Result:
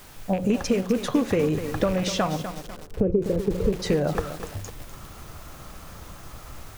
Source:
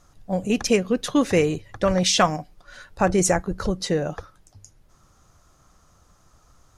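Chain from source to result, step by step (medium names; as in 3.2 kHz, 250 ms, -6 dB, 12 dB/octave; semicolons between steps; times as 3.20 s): rattle on loud lows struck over -25 dBFS, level -22 dBFS; level rider gain up to 10 dB; in parallel at -7 dB: word length cut 6-bit, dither triangular; on the sum: saturation -2 dBFS, distortion -20 dB; 2.36–3.73 s: FFT filter 320 Hz 0 dB, 460 Hz +9 dB, 750 Hz -24 dB; compression 12:1, threshold -21 dBFS, peak gain reduction 16 dB; treble shelf 2.4 kHz -11 dB; de-hum 180.2 Hz, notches 28; on a send at -22 dB: reverberation RT60 2.7 s, pre-delay 4 ms; on the sum: bit-crushed delay 249 ms, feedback 55%, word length 6-bit, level -9 dB; trim +2.5 dB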